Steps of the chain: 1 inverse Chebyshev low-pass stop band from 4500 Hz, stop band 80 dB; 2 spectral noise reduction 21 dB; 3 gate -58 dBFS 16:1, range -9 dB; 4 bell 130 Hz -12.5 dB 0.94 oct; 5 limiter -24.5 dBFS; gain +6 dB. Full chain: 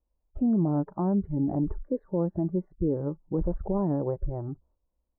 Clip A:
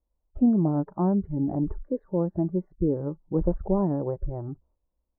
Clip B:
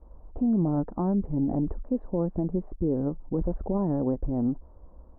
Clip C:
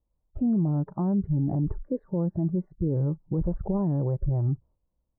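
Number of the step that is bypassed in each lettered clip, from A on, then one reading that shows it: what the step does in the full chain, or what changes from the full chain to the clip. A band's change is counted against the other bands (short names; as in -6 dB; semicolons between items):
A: 5, crest factor change +5.0 dB; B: 2, momentary loudness spread change -3 LU; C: 4, 125 Hz band +8.5 dB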